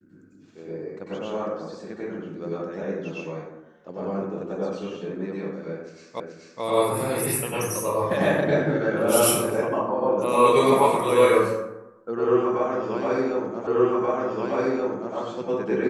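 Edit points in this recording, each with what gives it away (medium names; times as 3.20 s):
6.20 s: repeat of the last 0.43 s
13.67 s: repeat of the last 1.48 s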